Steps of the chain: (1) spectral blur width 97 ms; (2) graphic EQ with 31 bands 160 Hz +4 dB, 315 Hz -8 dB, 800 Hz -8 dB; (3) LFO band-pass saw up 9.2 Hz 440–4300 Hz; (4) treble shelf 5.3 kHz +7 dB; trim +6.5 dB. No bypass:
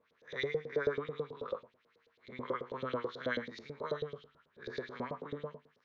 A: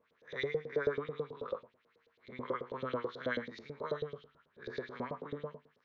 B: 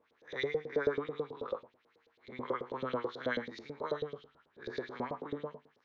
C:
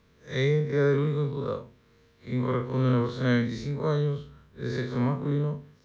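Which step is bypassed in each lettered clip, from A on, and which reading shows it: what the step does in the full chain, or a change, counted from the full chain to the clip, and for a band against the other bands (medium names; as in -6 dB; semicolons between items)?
4, 4 kHz band -2.0 dB; 2, 125 Hz band -2.5 dB; 3, 125 Hz band +16.5 dB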